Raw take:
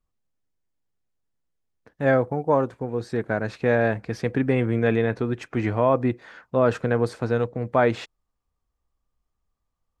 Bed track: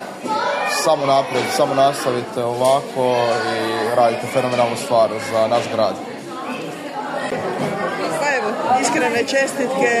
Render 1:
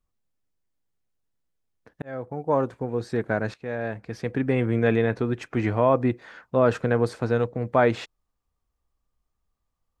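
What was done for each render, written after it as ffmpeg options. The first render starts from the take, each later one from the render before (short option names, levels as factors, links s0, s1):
-filter_complex "[0:a]asplit=3[s0][s1][s2];[s0]atrim=end=2.02,asetpts=PTS-STARTPTS,afade=t=out:st=2.016:d=0.004:c=hsin[s3];[s1]atrim=start=2.02:end=3.54,asetpts=PTS-STARTPTS,afade=t=in:d=0.68,afade=t=out:st=1.516:d=0.004:c=hsin:silence=0.177828[s4];[s2]atrim=start=3.54,asetpts=PTS-STARTPTS,afade=t=in:d=1.24:silence=0.177828[s5];[s3][s4][s5]concat=n=3:v=0:a=1"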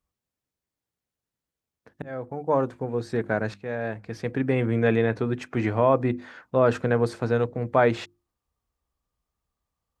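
-af "highpass=44,bandreject=f=50:t=h:w=6,bandreject=f=100:t=h:w=6,bandreject=f=150:t=h:w=6,bandreject=f=200:t=h:w=6,bandreject=f=250:t=h:w=6,bandreject=f=300:t=h:w=6,bandreject=f=350:t=h:w=6"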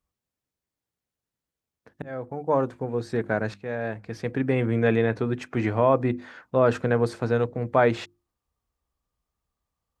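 -af anull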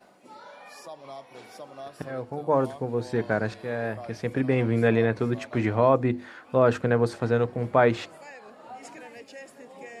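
-filter_complex "[1:a]volume=0.0473[s0];[0:a][s0]amix=inputs=2:normalize=0"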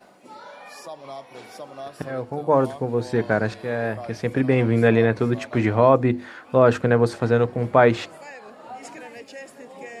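-af "volume=1.68"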